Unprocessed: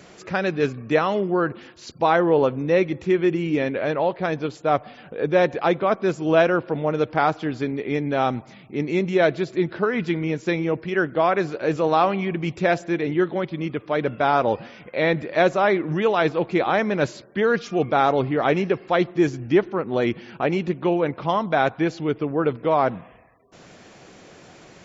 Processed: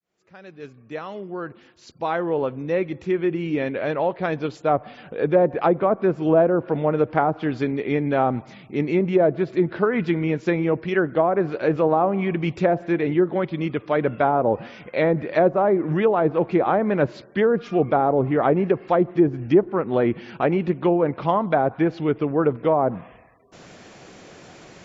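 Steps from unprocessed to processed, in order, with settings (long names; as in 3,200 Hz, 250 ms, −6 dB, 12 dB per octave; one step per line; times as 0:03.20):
fade in at the beginning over 5.43 s
treble cut that deepens with the level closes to 760 Hz, closed at −15 dBFS
level +2 dB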